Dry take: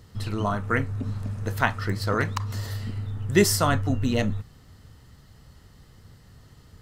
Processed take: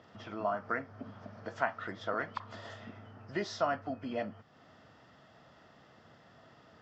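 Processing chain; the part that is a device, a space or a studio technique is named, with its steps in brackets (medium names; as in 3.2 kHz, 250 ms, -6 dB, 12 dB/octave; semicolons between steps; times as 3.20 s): hearing aid with frequency lowering (knee-point frequency compression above 2.1 kHz 1.5:1; compression 2:1, threshold -39 dBFS, peak gain reduction 14 dB; cabinet simulation 270–5000 Hz, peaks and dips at 420 Hz -4 dB, 660 Hz +10 dB, 1.4 kHz +3 dB, 2.5 kHz -4 dB, 3.9 kHz -9 dB)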